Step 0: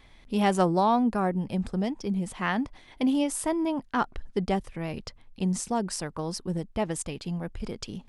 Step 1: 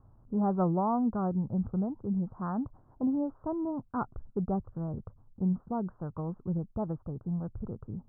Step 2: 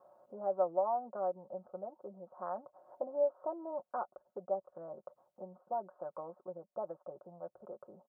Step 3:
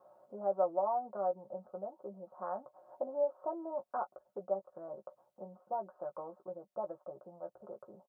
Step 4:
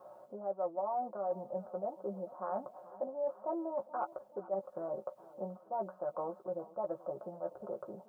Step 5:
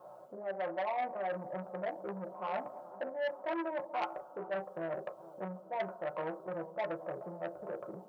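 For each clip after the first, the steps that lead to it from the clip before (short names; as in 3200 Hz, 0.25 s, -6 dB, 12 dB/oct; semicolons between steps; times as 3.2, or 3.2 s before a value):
steep low-pass 1400 Hz 72 dB/oct; bell 110 Hz +14 dB 1.3 oct; gain -7.5 dB
comb 5.5 ms, depth 65%; compressor 2:1, threshold -46 dBFS, peak gain reduction 14.5 dB; resonant high-pass 590 Hz, resonance Q 6.8
doubler 15 ms -7 dB
reverse; compressor 5:1, threshold -42 dBFS, peak gain reduction 15 dB; reverse; warbling echo 0.429 s, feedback 57%, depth 53 cents, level -19 dB; gain +8 dB
on a send at -4 dB: reverb, pre-delay 3 ms; on the sum: core saturation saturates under 1700 Hz; gain +1 dB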